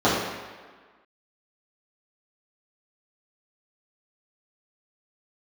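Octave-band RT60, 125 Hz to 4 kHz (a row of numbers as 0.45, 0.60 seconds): 1.1, 1.4, 1.5, 1.5, 1.5, 1.2 seconds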